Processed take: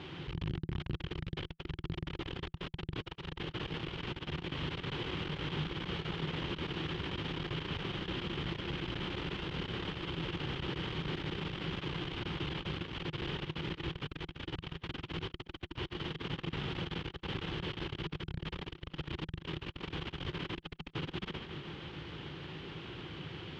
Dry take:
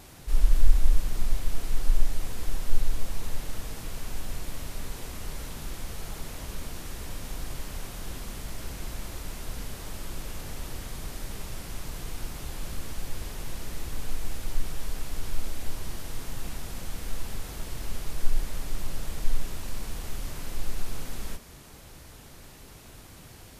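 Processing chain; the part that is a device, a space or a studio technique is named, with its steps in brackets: analogue delay pedal into a guitar amplifier (analogue delay 0.144 s, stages 4096, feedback 60%, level -11 dB; tube stage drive 30 dB, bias 0.35; speaker cabinet 98–3500 Hz, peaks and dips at 160 Hz +8 dB, 230 Hz -5 dB, 350 Hz +8 dB, 650 Hz -9 dB, 3100 Hz +9 dB); gain +5.5 dB

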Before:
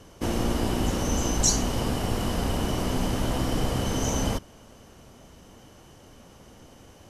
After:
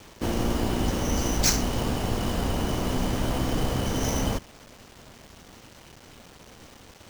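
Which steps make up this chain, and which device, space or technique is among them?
early 8-bit sampler (sample-rate reducer 12000 Hz, jitter 0%; bit-crush 8-bit)

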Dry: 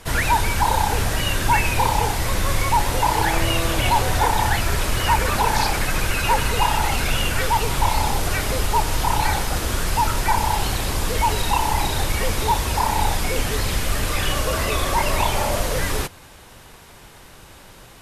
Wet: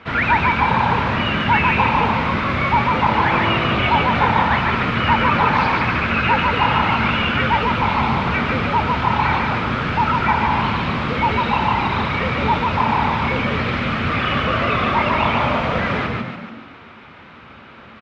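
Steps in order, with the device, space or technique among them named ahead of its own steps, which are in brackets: frequency-shifting delay pedal into a guitar cabinet (frequency-shifting echo 0.145 s, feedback 50%, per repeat +51 Hz, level -3.5 dB; speaker cabinet 96–3400 Hz, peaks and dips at 230 Hz +8 dB, 1300 Hz +9 dB, 2300 Hz +6 dB)

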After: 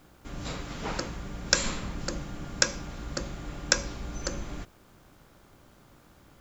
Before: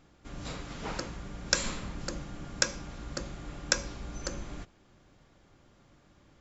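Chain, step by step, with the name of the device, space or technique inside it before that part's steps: video cassette with head-switching buzz (buzz 60 Hz, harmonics 26, -68 dBFS -1 dB/oct; white noise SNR 35 dB); gain +3.5 dB

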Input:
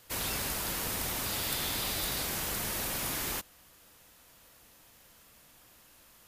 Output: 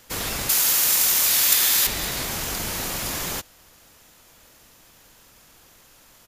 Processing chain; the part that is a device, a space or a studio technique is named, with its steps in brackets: octave pedal (harmoniser -12 st -3 dB); 0.49–1.87 tilt +3.5 dB/oct; gain +4.5 dB

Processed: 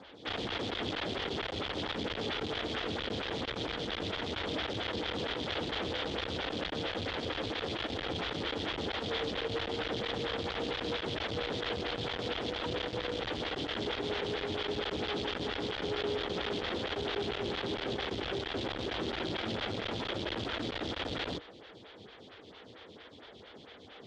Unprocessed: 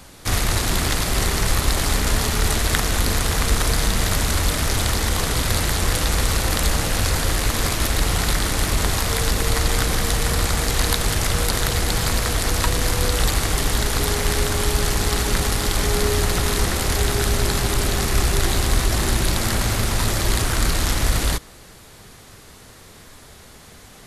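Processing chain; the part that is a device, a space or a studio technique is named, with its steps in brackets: vibe pedal into a guitar amplifier (photocell phaser 4.4 Hz; tube stage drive 32 dB, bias 0.65; speaker cabinet 100–4200 Hz, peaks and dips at 150 Hz -5 dB, 310 Hz +4 dB, 480 Hz +5 dB, 1100 Hz -4 dB, 3300 Hz +10 dB)

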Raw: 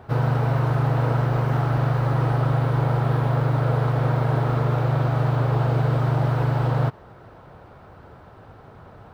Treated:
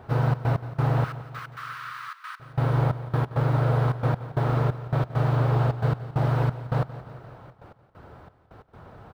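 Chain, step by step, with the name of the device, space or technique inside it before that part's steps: 1.04–2.4 steep high-pass 1100 Hz 72 dB/oct; trance gate with a delay (step gate "xxx.x..xxx..x.xx" 134 bpm -24 dB; feedback echo 0.174 s, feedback 58%, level -15 dB); gain -1.5 dB

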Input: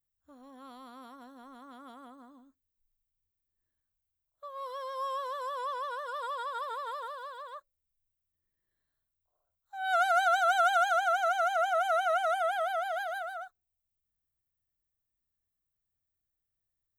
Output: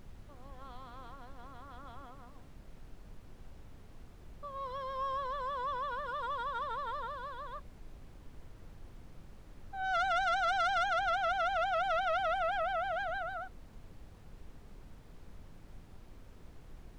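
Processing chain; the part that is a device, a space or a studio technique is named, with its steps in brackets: aircraft cabin announcement (BPF 450–3800 Hz; soft clip -27 dBFS, distortion -11 dB; brown noise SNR 11 dB)

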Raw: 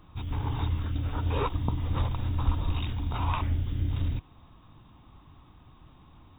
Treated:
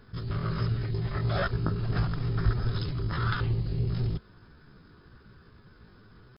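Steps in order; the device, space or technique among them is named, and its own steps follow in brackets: chipmunk voice (pitch shift +5.5 st)

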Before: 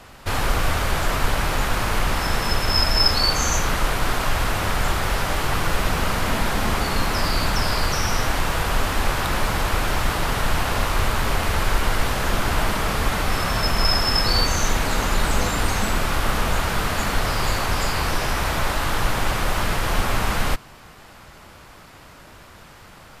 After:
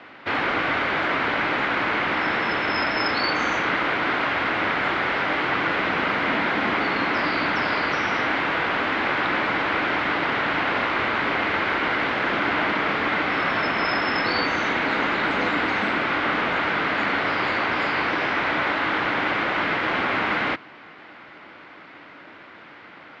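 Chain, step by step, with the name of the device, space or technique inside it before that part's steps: kitchen radio (speaker cabinet 230–3600 Hz, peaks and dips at 300 Hz +8 dB, 1500 Hz +4 dB, 2100 Hz +7 dB)

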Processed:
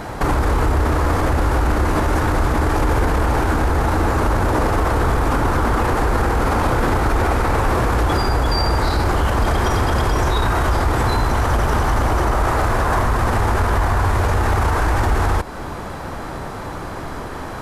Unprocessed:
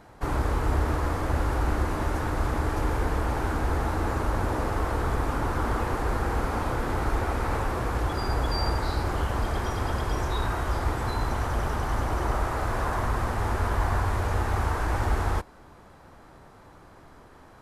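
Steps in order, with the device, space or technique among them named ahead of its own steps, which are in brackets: loud club master (compressor 1.5:1, threshold -34 dBFS, peak gain reduction 5.5 dB; hard clip -20.5 dBFS, distortion -38 dB; maximiser +30.5 dB); gain -8.5 dB

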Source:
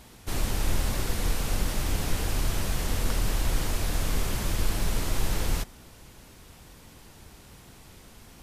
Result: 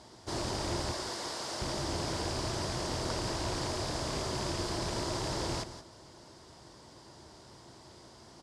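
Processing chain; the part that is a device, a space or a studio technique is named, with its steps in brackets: 0.91–1.62 HPF 620 Hz 6 dB/oct; bell 180 Hz -2.5 dB 0.98 oct; echo 0.175 s -12 dB; car door speaker with a rattle (rattling part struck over -27 dBFS, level -26 dBFS; speaker cabinet 85–8600 Hz, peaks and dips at 130 Hz +4 dB, 350 Hz +9 dB, 630 Hz +8 dB, 970 Hz +7 dB, 2500 Hz -8 dB, 4900 Hz +9 dB); gain -4.5 dB

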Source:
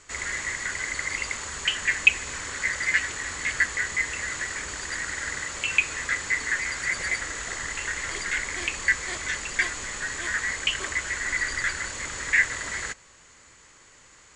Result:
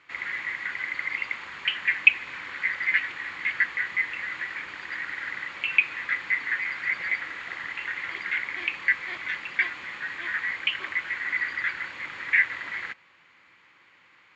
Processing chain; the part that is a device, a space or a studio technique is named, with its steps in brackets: kitchen radio (speaker cabinet 190–3500 Hz, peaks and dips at 240 Hz -5 dB, 430 Hz -9 dB, 620 Hz -6 dB, 2300 Hz +6 dB); gain -2.5 dB

